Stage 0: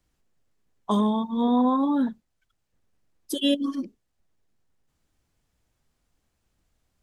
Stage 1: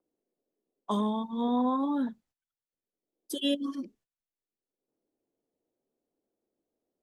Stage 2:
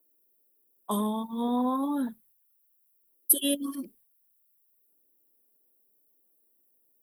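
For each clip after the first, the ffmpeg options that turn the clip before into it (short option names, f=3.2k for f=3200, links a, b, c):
-filter_complex "[0:a]agate=range=-20dB:threshold=-55dB:ratio=16:detection=peak,lowshelf=f=120:g=-7.5,acrossover=split=340|460|2500[a][b][c][d];[b]acompressor=mode=upward:threshold=-54dB:ratio=2.5[e];[a][e][c][d]amix=inputs=4:normalize=0,volume=-5dB"
-af "aexciter=amount=12.2:drive=9.3:freq=9.5k"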